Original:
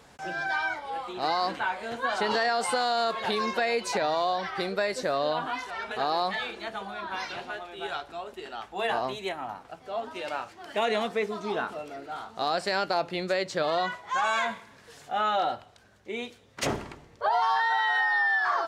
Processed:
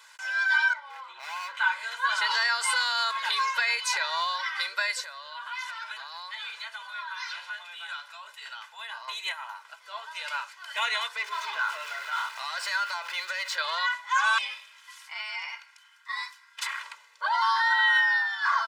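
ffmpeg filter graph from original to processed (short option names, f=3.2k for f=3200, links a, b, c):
-filter_complex "[0:a]asettb=1/sr,asplit=3[a][b][c];[a]atrim=end=0.734[d];[b]atrim=start=0.73:end=1.57,asetpts=PTS-STARTPTS,afade=t=in:d=0.004:c=qsin,afade=t=out:st=0.836:d=0.004:c=qsin,lowpass=f=1k:p=1,asoftclip=type=hard:threshold=-31.5dB[e];[c]atrim=start=1.566[f];[d][e]acrossfade=d=0.004:c1=hsin:c2=qsin[g];[g][f]acrossfade=d=0.004:c1=qsin:c2=hsin,asettb=1/sr,asplit=3[h][i][j];[h]atrim=end=5.044[k];[i]atrim=start=5.04:end=9.08,asetpts=PTS-STARTPTS,afade=t=in:d=0.004:c=qsin,afade=t=out:st=4.036:d=0.004:c=qsin,acompressor=threshold=-36dB:ratio=4:attack=3.2:release=140:knee=1:detection=peak,equalizer=f=360:t=o:w=0.45:g=-8[l];[j]atrim=start=9.076[m];[k][l]acrossfade=d=0.004:c1=hsin:c2=qsin[n];[n][m]acrossfade=d=0.004:c1=qsin:c2=hsin,asettb=1/sr,asplit=3[o][p][q];[o]atrim=end=11.164[r];[p]atrim=start=11.16:end=13.58,asetpts=PTS-STARTPTS,afade=t=in:d=0.004:c=qsin,afade=t=out:st=2.416:d=0.004:c=qsin,aeval=exprs='val(0)*gte(abs(val(0)),0.00447)':c=same,acompressor=threshold=-32dB:ratio=5:attack=3.2:release=140:knee=1:detection=peak,asplit=2[s][t];[t]highpass=f=720:p=1,volume=19dB,asoftclip=type=tanh:threshold=-21.5dB[u];[s][u]amix=inputs=2:normalize=0,lowpass=f=2.3k:p=1,volume=-6dB[v];[q]atrim=start=13.576[w];[r][v]acrossfade=d=0.004:c1=hsin:c2=qsin[x];[x][w]acrossfade=d=0.004:c1=qsin:c2=hsin,asettb=1/sr,asplit=3[y][z][aa];[y]atrim=end=14.384[ab];[z]atrim=start=14.38:end=16.83,asetpts=PTS-STARTPTS,afade=t=in:d=0.004:c=qsin,afade=t=out:st=2.446:d=0.004:c=qsin,acompressor=threshold=-29dB:ratio=5:attack=3.2:release=140:knee=1:detection=peak,aeval=exprs='val(0)*sin(2*PI*1500*n/s)':c=same[ac];[aa]atrim=start=16.826[ad];[ab][ac]acrossfade=d=0.004:c1=hsin:c2=qsin[ae];[ae][ad]acrossfade=d=0.004:c1=qsin:c2=hsin,highpass=f=1.1k:w=0.5412,highpass=f=1.1k:w=1.3066,aecho=1:1:2:0.87,volume=3dB"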